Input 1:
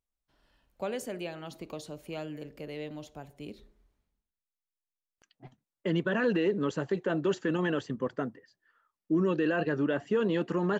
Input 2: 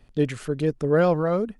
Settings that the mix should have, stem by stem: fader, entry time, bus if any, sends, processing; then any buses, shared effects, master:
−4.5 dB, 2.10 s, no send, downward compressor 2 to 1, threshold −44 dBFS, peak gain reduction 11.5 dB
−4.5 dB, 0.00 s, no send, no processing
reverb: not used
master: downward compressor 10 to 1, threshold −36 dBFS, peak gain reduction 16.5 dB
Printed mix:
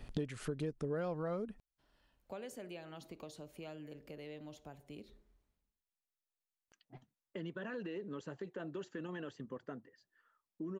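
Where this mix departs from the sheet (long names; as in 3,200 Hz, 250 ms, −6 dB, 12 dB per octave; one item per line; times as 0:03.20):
stem 1: entry 2.10 s → 1.50 s
stem 2 −4.5 dB → +4.5 dB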